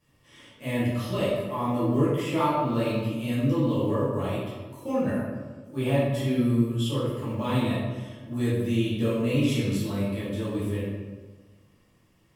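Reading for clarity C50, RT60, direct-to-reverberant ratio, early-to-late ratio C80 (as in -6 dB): -1.0 dB, 1.4 s, -10.0 dB, 1.5 dB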